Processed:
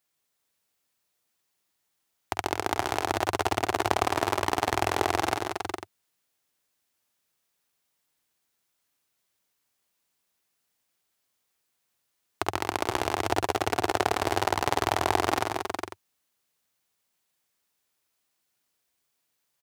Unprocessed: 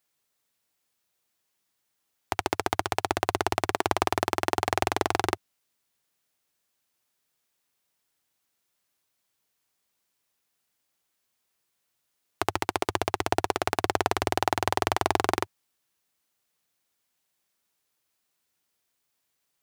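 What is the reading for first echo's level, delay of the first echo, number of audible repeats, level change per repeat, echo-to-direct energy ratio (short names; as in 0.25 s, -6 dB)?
-11.0 dB, 49 ms, 5, no steady repeat, -2.5 dB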